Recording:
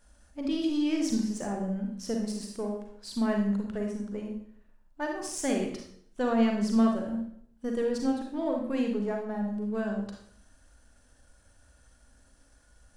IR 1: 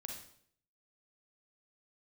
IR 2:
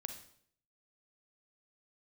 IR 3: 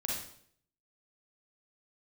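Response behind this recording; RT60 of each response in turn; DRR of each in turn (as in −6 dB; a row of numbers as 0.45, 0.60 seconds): 1; 0.60, 0.60, 0.60 seconds; 1.0, 6.5, −3.0 decibels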